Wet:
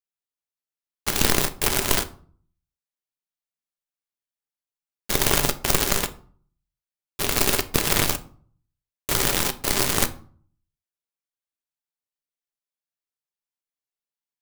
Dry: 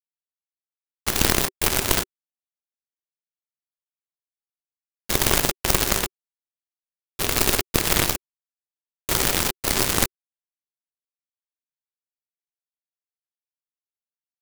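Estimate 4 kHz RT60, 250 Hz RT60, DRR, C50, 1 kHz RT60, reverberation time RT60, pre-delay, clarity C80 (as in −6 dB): 0.30 s, 0.60 s, 10.0 dB, 17.5 dB, 0.45 s, 0.50 s, 5 ms, 21.5 dB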